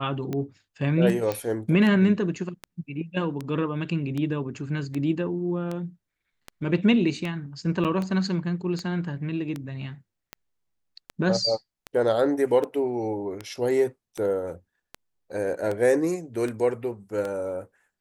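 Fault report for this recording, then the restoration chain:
tick 78 rpm -18 dBFS
1.32 s: pop -14 dBFS
7.84–7.85 s: dropout 7.4 ms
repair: de-click; interpolate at 7.84 s, 7.4 ms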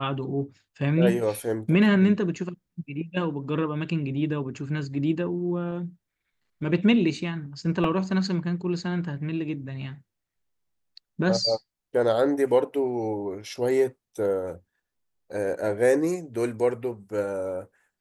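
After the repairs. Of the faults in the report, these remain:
nothing left

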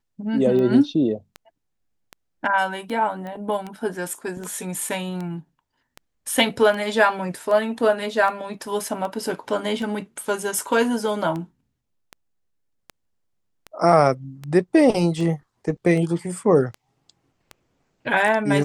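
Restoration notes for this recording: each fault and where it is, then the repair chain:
tick 78 rpm -19 dBFS
3.27 s: pop -23 dBFS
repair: de-click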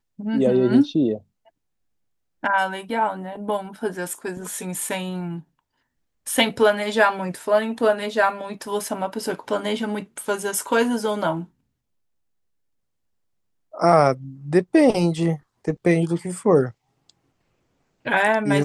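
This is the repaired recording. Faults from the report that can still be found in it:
nothing left

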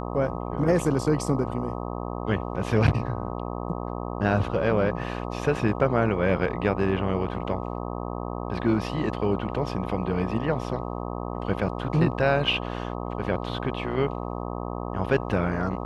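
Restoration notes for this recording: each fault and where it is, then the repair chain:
buzz 60 Hz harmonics 21 -32 dBFS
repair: de-hum 60 Hz, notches 21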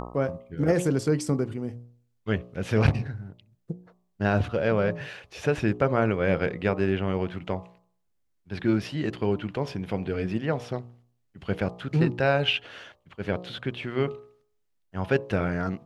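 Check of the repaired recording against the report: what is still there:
nothing left

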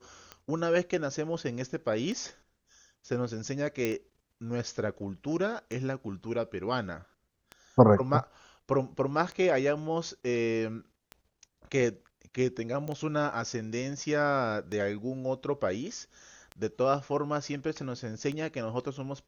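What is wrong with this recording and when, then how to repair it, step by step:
tick 33 1/3 rpm -25 dBFS
3.85 s: pop -15 dBFS
12.88 s: pop -24 dBFS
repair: de-click

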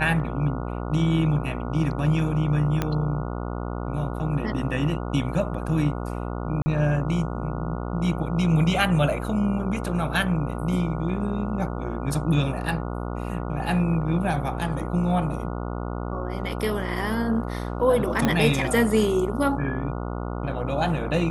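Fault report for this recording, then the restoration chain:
buzz 60 Hz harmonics 24 -30 dBFS
2.82 s: pop -10 dBFS
6.62–6.66 s: dropout 40 ms
18.25 s: pop -8 dBFS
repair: de-click; de-hum 60 Hz, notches 24; interpolate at 6.62 s, 40 ms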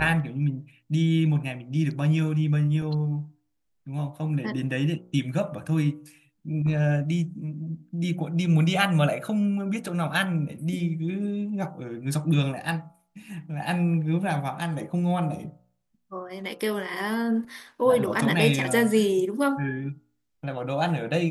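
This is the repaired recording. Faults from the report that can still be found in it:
2.82 s: pop
18.25 s: pop

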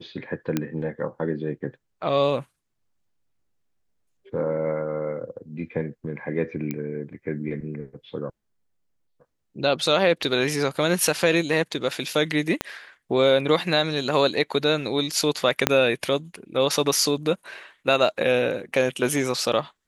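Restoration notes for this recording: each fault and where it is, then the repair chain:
0.57 s: pop -10 dBFS
6.71 s: pop -14 dBFS
12.61 s: pop -9 dBFS
15.67 s: pop -1 dBFS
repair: de-click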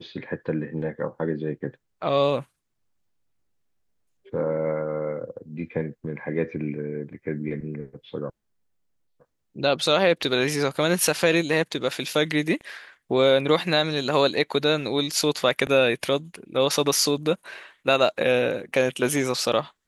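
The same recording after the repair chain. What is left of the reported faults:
12.61 s: pop
15.67 s: pop

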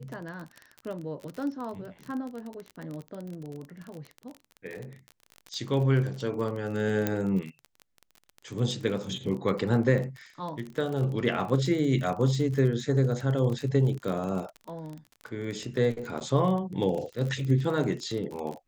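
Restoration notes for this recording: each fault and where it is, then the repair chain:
crackle 33 per s -33 dBFS
7.07 s: pop -12 dBFS
16.20–16.21 s: dropout 8.3 ms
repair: de-click; interpolate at 16.20 s, 8.3 ms

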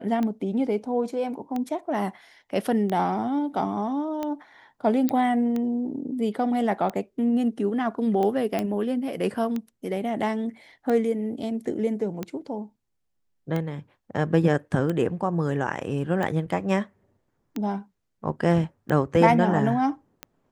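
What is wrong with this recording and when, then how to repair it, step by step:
tick 45 rpm -17 dBFS
5.09 s: pop -11 dBFS
8.59 s: pop -13 dBFS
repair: de-click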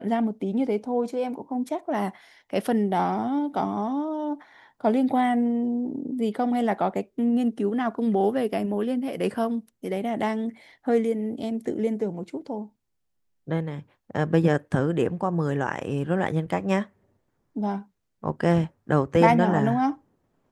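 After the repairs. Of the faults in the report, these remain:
nothing left

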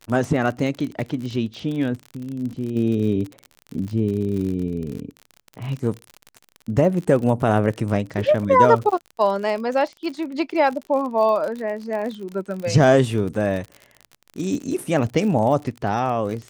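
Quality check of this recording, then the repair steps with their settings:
crackle 44 per s -28 dBFS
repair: de-click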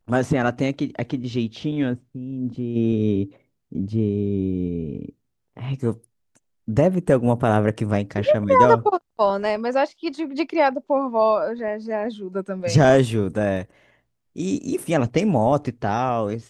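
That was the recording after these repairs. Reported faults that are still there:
nothing left

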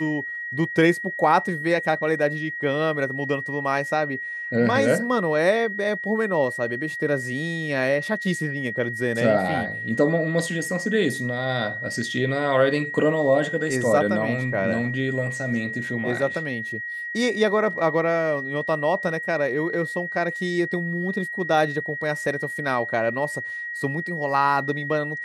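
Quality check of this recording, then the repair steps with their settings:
whine 1.9 kHz -29 dBFS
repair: band-stop 1.9 kHz, Q 30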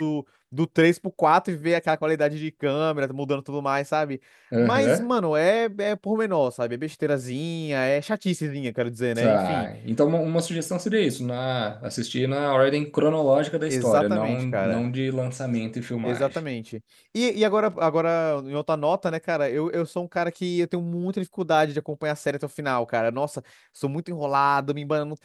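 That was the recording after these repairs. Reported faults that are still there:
nothing left

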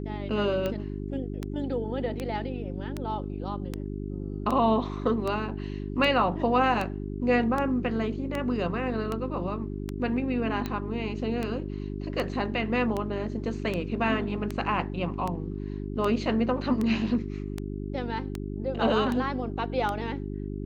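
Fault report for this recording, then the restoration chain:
hum 50 Hz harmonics 8 -34 dBFS
tick 78 rpm -17 dBFS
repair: de-click; de-hum 50 Hz, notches 8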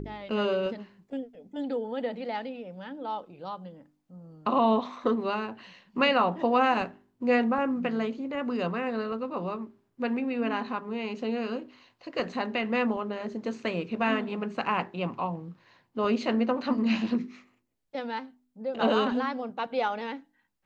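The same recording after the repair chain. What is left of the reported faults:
nothing left

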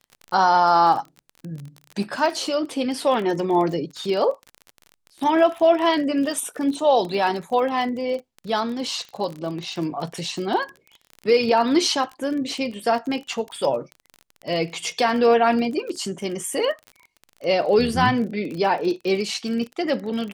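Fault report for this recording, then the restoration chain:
crackle 34 per s -29 dBFS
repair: de-click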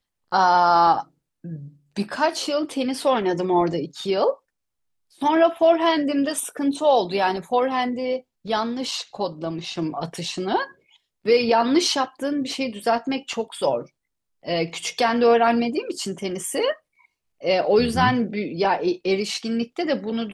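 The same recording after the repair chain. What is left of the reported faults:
nothing left

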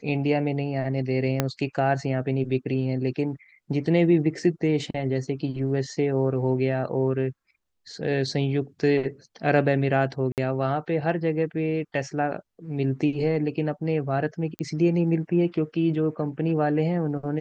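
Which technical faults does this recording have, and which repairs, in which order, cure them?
1.40 s: pop -7 dBFS
10.32–10.38 s: dropout 58 ms
14.59 s: pop -17 dBFS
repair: de-click; interpolate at 10.32 s, 58 ms

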